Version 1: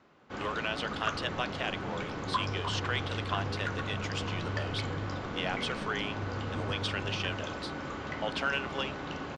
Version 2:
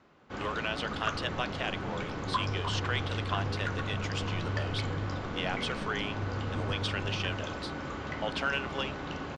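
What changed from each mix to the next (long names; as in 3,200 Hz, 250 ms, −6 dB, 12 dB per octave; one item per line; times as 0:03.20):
master: add low-shelf EQ 80 Hz +6.5 dB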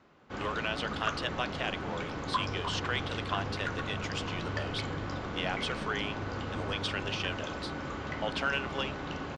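second sound: add low-shelf EQ 320 Hz −7 dB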